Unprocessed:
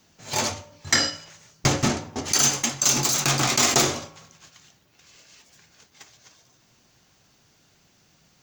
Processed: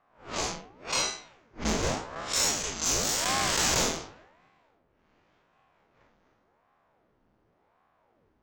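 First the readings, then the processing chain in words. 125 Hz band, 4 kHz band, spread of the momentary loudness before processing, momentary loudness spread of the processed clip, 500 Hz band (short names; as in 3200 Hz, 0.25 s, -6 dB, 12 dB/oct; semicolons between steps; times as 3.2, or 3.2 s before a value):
-10.0 dB, -5.5 dB, 11 LU, 11 LU, -4.0 dB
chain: time blur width 0.115 s; low-pass opened by the level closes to 1100 Hz, open at -22 dBFS; one-sided clip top -17.5 dBFS; ring modulator with a swept carrier 510 Hz, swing 85%, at 0.89 Hz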